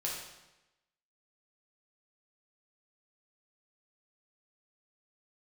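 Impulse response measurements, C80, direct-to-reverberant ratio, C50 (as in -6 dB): 5.0 dB, -4.0 dB, 2.0 dB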